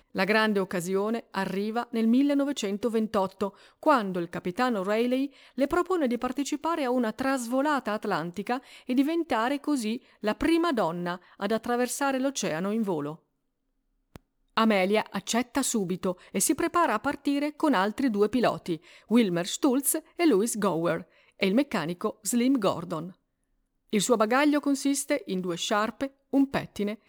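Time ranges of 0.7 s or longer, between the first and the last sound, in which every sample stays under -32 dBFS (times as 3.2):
13.13–14.16
23.06–23.93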